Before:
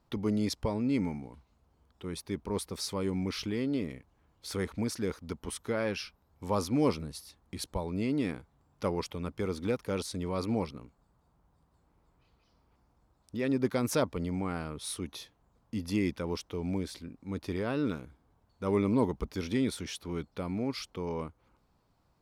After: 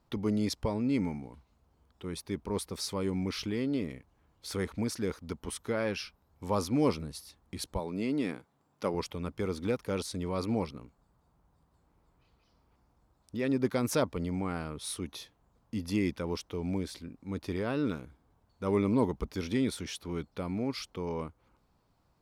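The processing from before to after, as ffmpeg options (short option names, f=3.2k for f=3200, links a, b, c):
-filter_complex "[0:a]asettb=1/sr,asplit=3[a][b][c];[a]atrim=end=7.794[d];[b]atrim=start=7.79:end=8.94,asetpts=PTS-STARTPTS,afade=t=in:d=0.004:c=qsin,afade=t=out:st=1.146:d=0.004:c=qsin,highpass=170[e];[c]atrim=start=8.936[f];[d][e]acrossfade=d=0.004:c1=hsin:c2=qsin[g];[g][f]acrossfade=d=0.004:c1=qsin:c2=hsin"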